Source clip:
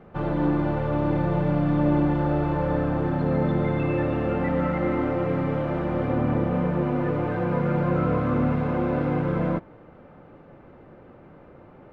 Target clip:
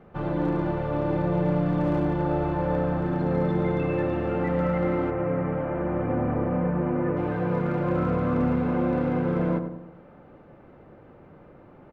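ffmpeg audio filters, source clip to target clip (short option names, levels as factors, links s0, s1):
-filter_complex "[0:a]asoftclip=type=hard:threshold=0.168,asettb=1/sr,asplit=3[s0][s1][s2];[s0]atrim=end=5.104[s3];[s1]atrim=start=5.1:end=7.17,asetpts=PTS-STARTPTS,afade=t=in:d=0.004:c=qsin,afade=t=out:st=2.066:d=0.004:c=qsin,lowpass=f=2400:w=0.5412,lowpass=f=2400:w=1.3066[s4];[s2]atrim=start=7.166[s5];[s3][s4]acrossfade=d=0.004:c1=hsin:c2=qsin[s6];[s6][s5]acrossfade=d=0.004:c1=qsin:c2=hsin,asplit=2[s7][s8];[s8]adelay=97,lowpass=f=1200:p=1,volume=0.473,asplit=2[s9][s10];[s10]adelay=97,lowpass=f=1200:p=1,volume=0.51,asplit=2[s11][s12];[s12]adelay=97,lowpass=f=1200:p=1,volume=0.51,asplit=2[s13][s14];[s14]adelay=97,lowpass=f=1200:p=1,volume=0.51,asplit=2[s15][s16];[s16]adelay=97,lowpass=f=1200:p=1,volume=0.51,asplit=2[s17][s18];[s18]adelay=97,lowpass=f=1200:p=1,volume=0.51[s19];[s7][s9][s11][s13][s15][s17][s19]amix=inputs=7:normalize=0,volume=0.75"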